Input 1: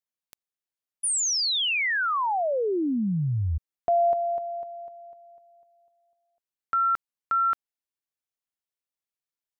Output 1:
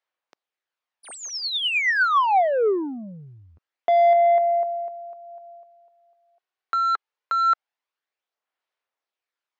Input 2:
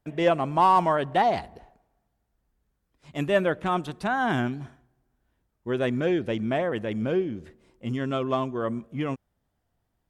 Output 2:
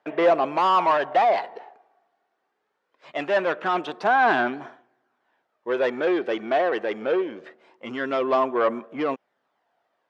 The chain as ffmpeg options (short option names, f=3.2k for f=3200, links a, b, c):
-filter_complex "[0:a]asplit=2[a][b];[b]highpass=f=720:p=1,volume=20dB,asoftclip=type=tanh:threshold=-11dB[c];[a][c]amix=inputs=2:normalize=0,lowpass=f=1.4k:p=1,volume=-6dB,aphaser=in_gain=1:out_gain=1:delay=2.7:decay=0.32:speed=0.23:type=sinusoidal,highpass=400,lowpass=5.3k"